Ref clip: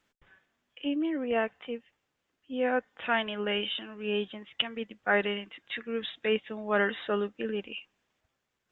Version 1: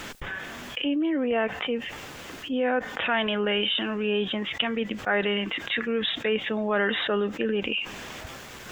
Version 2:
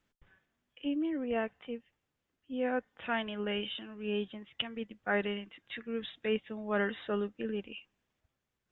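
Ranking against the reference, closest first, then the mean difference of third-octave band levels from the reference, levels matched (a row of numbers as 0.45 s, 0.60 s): 2, 1; 1.5 dB, 5.5 dB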